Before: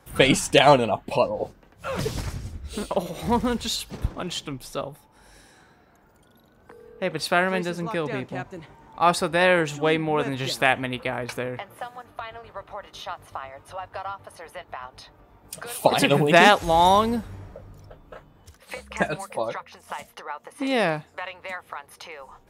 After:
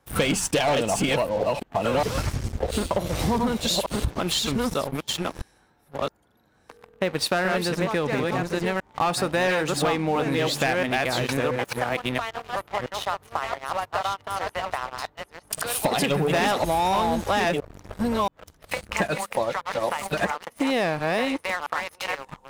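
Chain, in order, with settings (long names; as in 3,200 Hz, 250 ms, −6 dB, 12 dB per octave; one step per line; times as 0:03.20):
delay that plays each chunk backwards 677 ms, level −3.5 dB
leveller curve on the samples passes 3
downward compressor, threshold −18 dBFS, peak gain reduction 12.5 dB
level −3 dB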